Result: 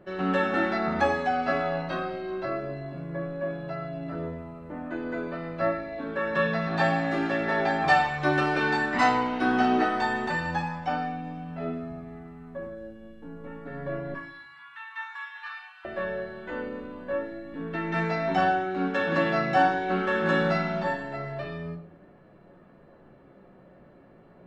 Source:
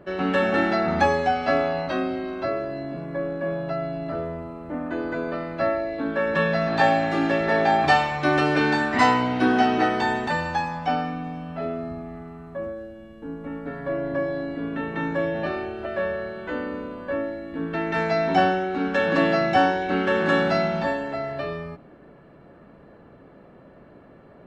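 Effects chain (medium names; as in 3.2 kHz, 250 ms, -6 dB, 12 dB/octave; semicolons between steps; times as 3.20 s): 14.14–15.85 s: steep high-pass 910 Hz 72 dB/octave; dynamic bell 1.3 kHz, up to +4 dB, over -35 dBFS, Q 1.9; flange 0.27 Hz, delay 9.2 ms, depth 9.2 ms, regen +54%; simulated room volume 830 m³, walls furnished, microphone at 0.96 m; trim -1.5 dB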